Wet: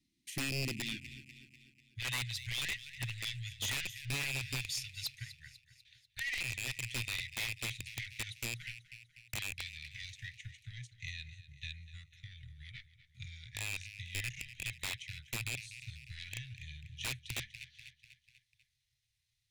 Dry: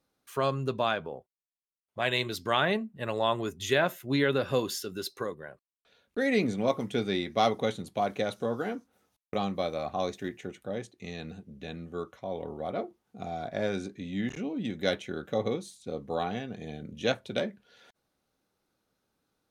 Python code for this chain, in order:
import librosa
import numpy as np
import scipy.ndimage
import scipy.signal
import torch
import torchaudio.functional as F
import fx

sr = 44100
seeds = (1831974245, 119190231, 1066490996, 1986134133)

y = fx.rattle_buzz(x, sr, strikes_db=-33.0, level_db=-16.0)
y = scipy.signal.sosfilt(scipy.signal.butter(2, 9400.0, 'lowpass', fs=sr, output='sos'), y)
y = 10.0 ** (-27.0 / 20.0) * np.tanh(y / 10.0 ** (-27.0 / 20.0))
y = fx.transient(y, sr, attack_db=7, sustain_db=-5)
y = fx.cheby1_bandstop(y, sr, low_hz=fx.steps((0.0, 340.0), (0.96, 130.0)), high_hz=1900.0, order=5)
y = fx.echo_feedback(y, sr, ms=246, feedback_pct=53, wet_db=-16.0)
y = 10.0 ** (-31.0 / 20.0) * (np.abs((y / 10.0 ** (-31.0 / 20.0) + 3.0) % 4.0 - 2.0) - 1.0)
y = y * librosa.db_to_amplitude(1.5)